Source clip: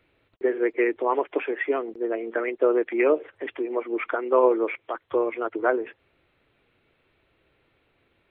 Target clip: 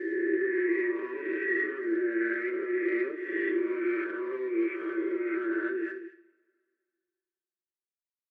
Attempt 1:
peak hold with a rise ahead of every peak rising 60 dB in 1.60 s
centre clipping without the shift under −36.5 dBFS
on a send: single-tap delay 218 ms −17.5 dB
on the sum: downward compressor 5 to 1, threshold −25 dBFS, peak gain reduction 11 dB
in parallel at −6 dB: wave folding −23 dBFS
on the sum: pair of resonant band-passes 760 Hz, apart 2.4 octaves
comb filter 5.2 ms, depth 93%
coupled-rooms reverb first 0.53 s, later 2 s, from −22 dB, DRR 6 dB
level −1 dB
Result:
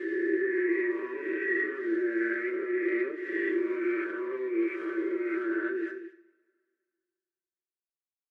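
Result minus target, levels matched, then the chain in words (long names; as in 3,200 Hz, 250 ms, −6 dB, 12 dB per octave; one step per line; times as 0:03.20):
centre clipping without the shift: distortion +9 dB
peak hold with a rise ahead of every peak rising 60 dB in 1.60 s
centre clipping without the shift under −43 dBFS
on a send: single-tap delay 218 ms −17.5 dB
on the sum: downward compressor 5 to 1, threshold −25 dBFS, peak gain reduction 11 dB
in parallel at −6 dB: wave folding −23 dBFS
on the sum: pair of resonant band-passes 760 Hz, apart 2.4 octaves
comb filter 5.2 ms, depth 93%
coupled-rooms reverb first 0.53 s, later 2 s, from −22 dB, DRR 6 dB
level −1 dB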